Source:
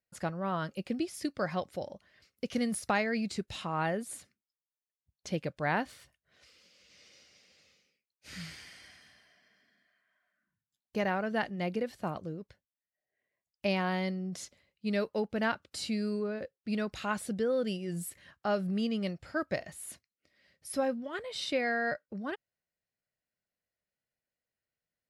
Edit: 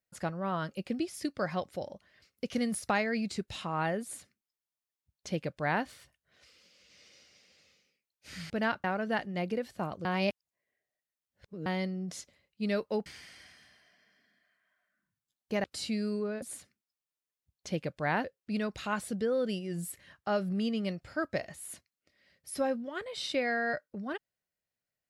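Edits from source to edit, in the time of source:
4.02–5.84 copy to 16.42
8.5–11.08 swap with 15.3–15.64
12.29–13.9 reverse

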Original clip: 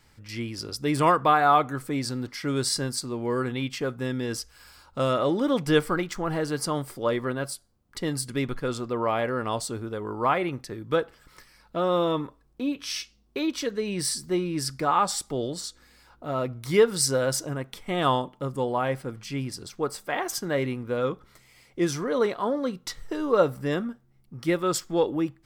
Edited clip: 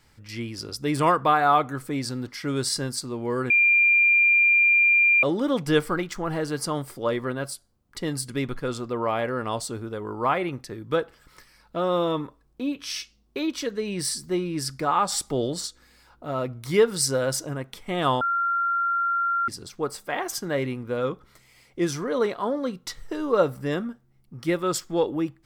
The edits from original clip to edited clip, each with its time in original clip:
3.5–5.23 bleep 2390 Hz -15 dBFS
15.12–15.67 gain +3.5 dB
18.21–19.48 bleep 1380 Hz -21 dBFS

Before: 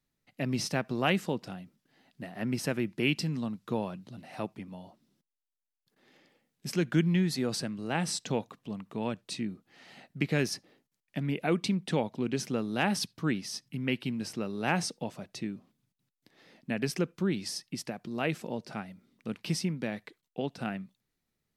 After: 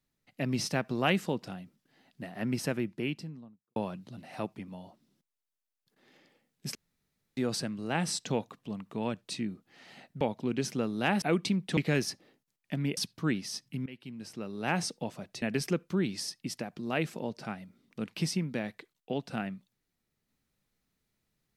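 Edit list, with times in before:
2.52–3.76 studio fade out
6.75–7.37 room tone
10.21–11.41 swap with 11.96–12.97
13.86–14.92 fade in, from -20 dB
15.42–16.7 cut

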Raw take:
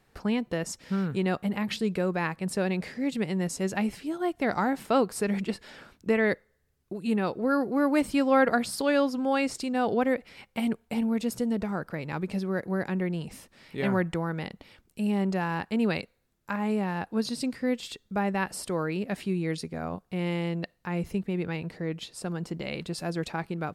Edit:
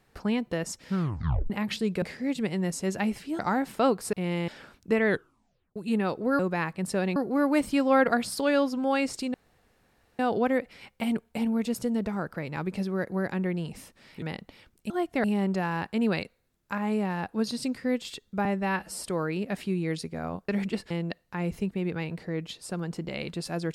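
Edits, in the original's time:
0.95 tape stop 0.55 s
2.02–2.79 move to 7.57
4.16–4.5 move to 15.02
5.24–5.66 swap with 20.08–20.43
6.25 tape stop 0.69 s
9.75 insert room tone 0.85 s
13.78–14.34 cut
18.23–18.6 stretch 1.5×

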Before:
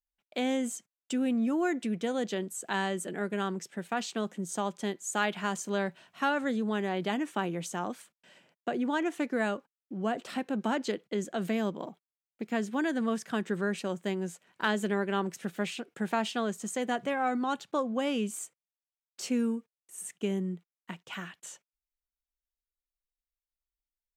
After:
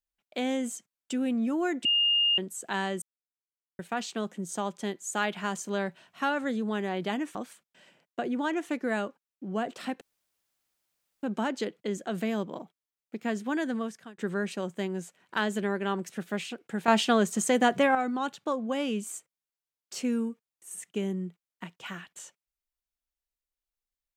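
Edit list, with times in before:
1.85–2.38 bleep 2830 Hz -21 dBFS
3.02–3.79 mute
7.35–7.84 cut
10.5 insert room tone 1.22 s
12.95–13.45 fade out
16.15–17.22 gain +8 dB

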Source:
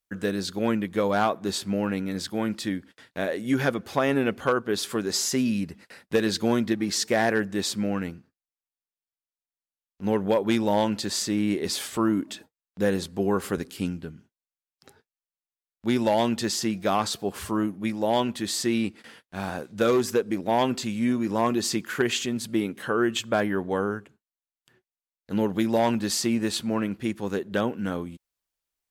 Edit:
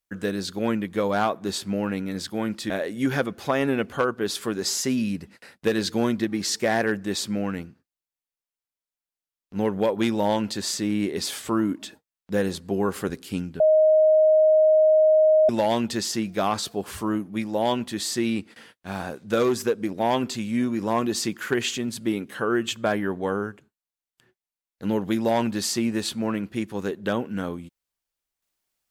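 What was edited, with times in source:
2.7–3.18 cut
14.08–15.97 bleep 624 Hz -13.5 dBFS

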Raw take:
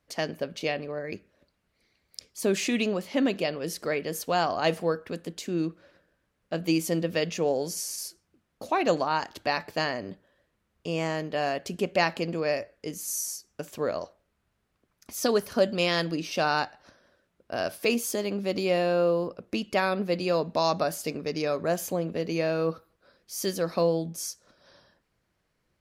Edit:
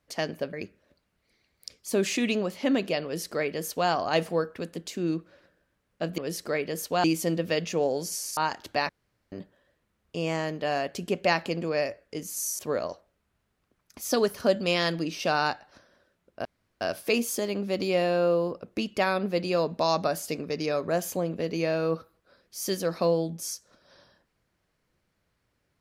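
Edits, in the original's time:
0.53–1.04 cut
3.55–4.41 copy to 6.69
8.02–9.08 cut
9.6–10.03 room tone
13.3–13.71 cut
17.57 insert room tone 0.36 s

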